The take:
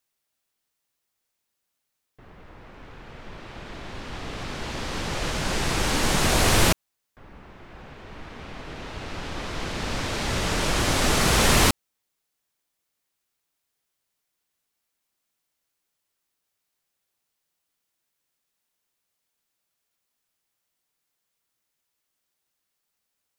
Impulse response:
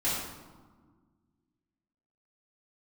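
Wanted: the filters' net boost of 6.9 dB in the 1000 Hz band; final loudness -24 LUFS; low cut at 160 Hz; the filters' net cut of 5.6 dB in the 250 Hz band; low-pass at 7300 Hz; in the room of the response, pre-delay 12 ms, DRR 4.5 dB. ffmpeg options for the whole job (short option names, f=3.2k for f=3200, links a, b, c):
-filter_complex "[0:a]highpass=160,lowpass=7.3k,equalizer=f=250:t=o:g=-7,equalizer=f=1k:t=o:g=9,asplit=2[a][b];[1:a]atrim=start_sample=2205,adelay=12[c];[b][c]afir=irnorm=-1:irlink=0,volume=-13.5dB[d];[a][d]amix=inputs=2:normalize=0,volume=-2.5dB"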